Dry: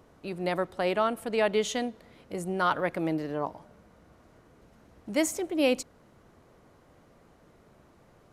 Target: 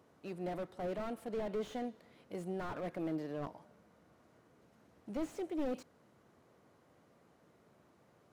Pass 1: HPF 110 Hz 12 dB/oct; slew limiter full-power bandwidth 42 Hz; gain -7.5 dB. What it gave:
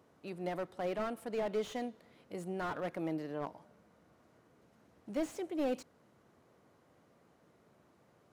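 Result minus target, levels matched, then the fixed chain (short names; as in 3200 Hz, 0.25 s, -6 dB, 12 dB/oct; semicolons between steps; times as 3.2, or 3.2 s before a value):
slew limiter: distortion -5 dB
HPF 110 Hz 12 dB/oct; slew limiter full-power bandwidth 21 Hz; gain -7.5 dB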